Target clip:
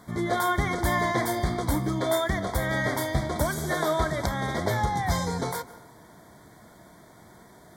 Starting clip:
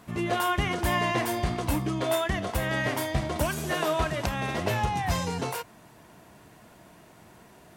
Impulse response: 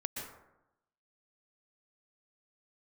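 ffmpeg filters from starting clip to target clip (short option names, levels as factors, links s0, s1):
-filter_complex "[0:a]asuperstop=centerf=2700:order=12:qfactor=2.9,asplit=2[s0][s1];[1:a]atrim=start_sample=2205,asetrate=37044,aresample=44100[s2];[s1][s2]afir=irnorm=-1:irlink=0,volume=0.178[s3];[s0][s3]amix=inputs=2:normalize=0"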